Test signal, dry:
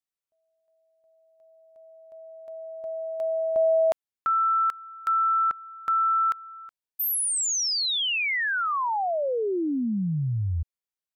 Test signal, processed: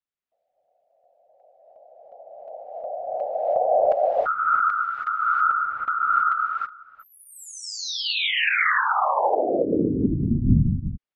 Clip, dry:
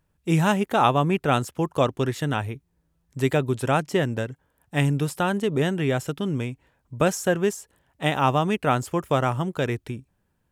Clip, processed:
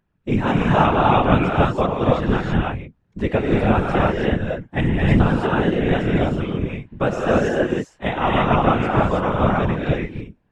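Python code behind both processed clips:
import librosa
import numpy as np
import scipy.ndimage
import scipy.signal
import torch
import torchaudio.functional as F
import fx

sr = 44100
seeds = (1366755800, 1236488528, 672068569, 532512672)

y = scipy.signal.sosfilt(scipy.signal.butter(2, 2900.0, 'lowpass', fs=sr, output='sos'), x)
y = fx.rev_gated(y, sr, seeds[0], gate_ms=350, shape='rising', drr_db=-3.5)
y = fx.whisperise(y, sr, seeds[1])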